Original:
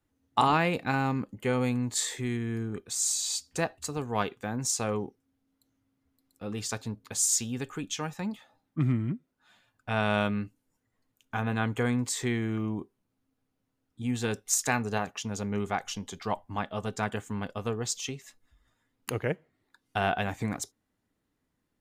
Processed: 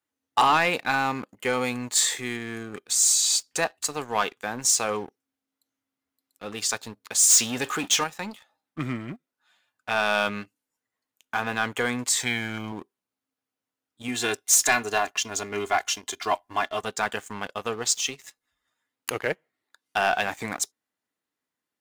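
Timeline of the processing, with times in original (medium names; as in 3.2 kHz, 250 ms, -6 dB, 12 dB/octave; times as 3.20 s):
7.30–8.04 s: power-law waveshaper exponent 0.7
12.20–12.72 s: comb 1.3 ms, depth 67%
14.08–16.81 s: comb 2.9 ms, depth 71%
whole clip: high-pass 910 Hz 6 dB/octave; waveshaping leveller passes 2; trim +2 dB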